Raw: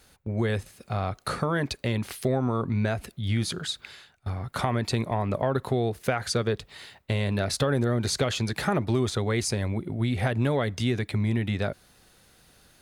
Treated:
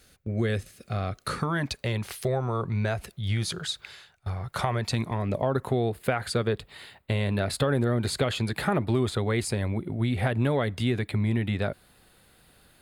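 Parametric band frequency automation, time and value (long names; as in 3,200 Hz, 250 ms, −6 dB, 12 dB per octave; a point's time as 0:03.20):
parametric band −14 dB 0.35 octaves
0:01.18 910 Hz
0:01.90 260 Hz
0:04.80 260 Hz
0:05.42 1,500 Hz
0:05.72 5,900 Hz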